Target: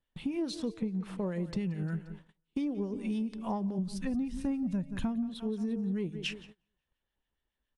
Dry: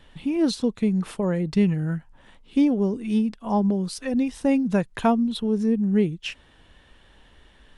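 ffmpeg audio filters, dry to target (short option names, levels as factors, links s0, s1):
-filter_complex "[0:a]aecho=1:1:176|352|528|704:0.141|0.0692|0.0339|0.0166,asplit=3[s0][s1][s2];[s0]afade=t=out:st=3.78:d=0.02[s3];[s1]asubboost=boost=8:cutoff=190,afade=t=in:st=3.78:d=0.02,afade=t=out:st=5.28:d=0.02[s4];[s2]afade=t=in:st=5.28:d=0.02[s5];[s3][s4][s5]amix=inputs=3:normalize=0,bandreject=f=150.6:t=h:w=4,bandreject=f=301.2:t=h:w=4,bandreject=f=451.8:t=h:w=4,bandreject=f=602.4:t=h:w=4,asettb=1/sr,asplit=3[s6][s7][s8];[s6]atrim=end=0.744[s9];[s7]atrim=start=0.74:end=1.32,asetpts=PTS-STARTPTS,afade=t=in:d=0.004:c=qsin,afade=t=out:st=0.576:d=0.004:c=qsin,highshelf=f=3300:g=-10.5[s10];[s8]atrim=start=1.316[s11];[s9][s10]acrossfade=d=0.004:c1=hsin:c2=qsin[s12];[s12][s11]acrossfade=d=0.004:c1=qsin:c2=hsin,asplit=2[s13][s14];[s14]asoftclip=type=tanh:threshold=0.158,volume=0.562[s15];[s13][s15]amix=inputs=2:normalize=0,acrossover=split=1400[s16][s17];[s16]aeval=exprs='val(0)*(1-0.5/2+0.5/2*cos(2*PI*7.1*n/s))':c=same[s18];[s17]aeval=exprs='val(0)*(1-0.5/2-0.5/2*cos(2*PI*7.1*n/s))':c=same[s19];[s18][s19]amix=inputs=2:normalize=0,acompressor=threshold=0.0562:ratio=10,agate=range=0.0355:threshold=0.00891:ratio=16:detection=peak,volume=0.562"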